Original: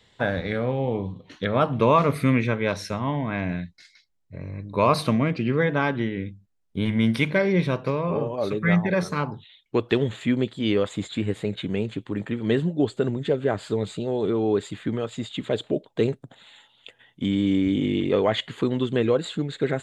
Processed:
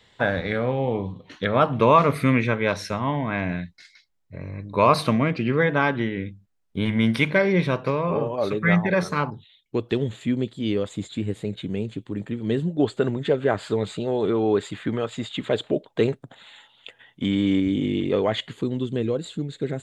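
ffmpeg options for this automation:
ffmpeg -i in.wav -af "asetnsamples=nb_out_samples=441:pad=0,asendcmd='9.3 equalizer g -7;12.77 equalizer g 4.5;17.6 equalizer g -2;18.53 equalizer g -10',equalizer=frequency=1400:width_type=o:width=2.8:gain=3.5" out.wav

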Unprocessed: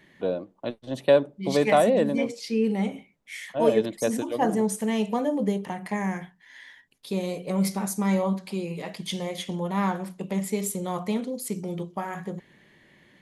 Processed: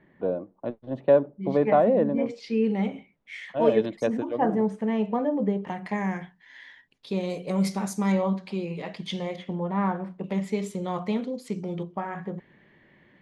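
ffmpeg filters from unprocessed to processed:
ffmpeg -i in.wav -af "asetnsamples=nb_out_samples=441:pad=0,asendcmd='2.26 lowpass f 3300;4.07 lowpass f 1800;5.67 lowpass f 4400;7.3 lowpass f 7300;8.12 lowpass f 4000;9.36 lowpass f 1700;10.24 lowpass f 4000;11.83 lowpass f 2300',lowpass=1300" out.wav

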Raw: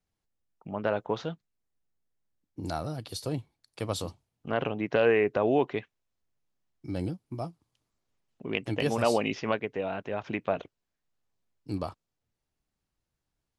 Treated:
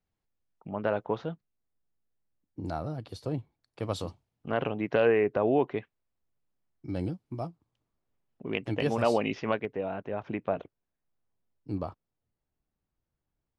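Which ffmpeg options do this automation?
ffmpeg -i in.wav -af "asetnsamples=nb_out_samples=441:pad=0,asendcmd='1.16 lowpass f 1400;3.83 lowpass f 3400;5.07 lowpass f 1700;6.89 lowpass f 3500;7.47 lowpass f 1400;8.47 lowpass f 3000;9.65 lowpass f 1200',lowpass=frequency=2900:poles=1" out.wav

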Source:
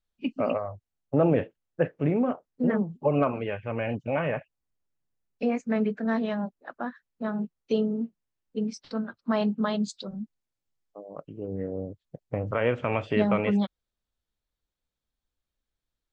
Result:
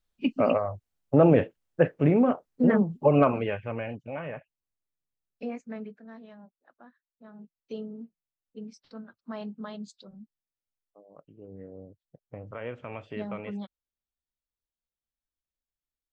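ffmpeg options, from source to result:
ffmpeg -i in.wav -af "volume=11.5dB,afade=type=out:start_time=3.32:duration=0.65:silence=0.251189,afade=type=out:start_time=5.49:duration=0.55:silence=0.266073,afade=type=in:start_time=7.28:duration=0.45:silence=0.398107" out.wav

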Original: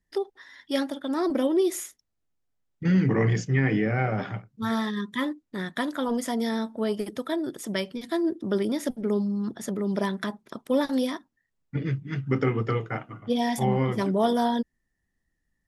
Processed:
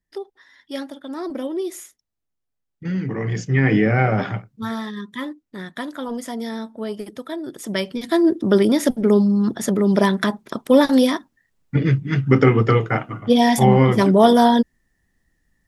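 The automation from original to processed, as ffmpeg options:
ffmpeg -i in.wav -af "volume=19.5dB,afade=type=in:start_time=3.24:duration=0.52:silence=0.281838,afade=type=out:start_time=4.28:duration=0.46:silence=0.354813,afade=type=in:start_time=7.42:duration=0.93:silence=0.266073" out.wav

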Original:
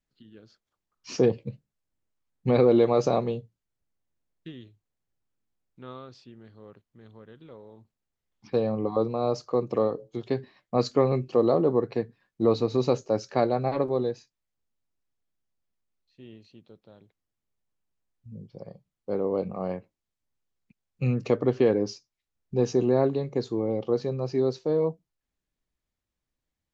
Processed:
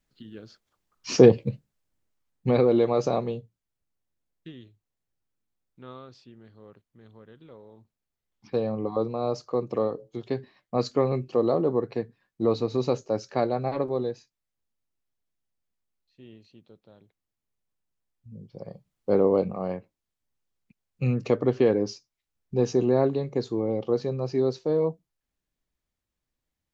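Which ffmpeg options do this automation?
ffmpeg -i in.wav -af "volume=16.5dB,afade=type=out:start_time=1.3:duration=1.37:silence=0.354813,afade=type=in:start_time=18.4:duration=0.79:silence=0.354813,afade=type=out:start_time=19.19:duration=0.4:silence=0.446684" out.wav

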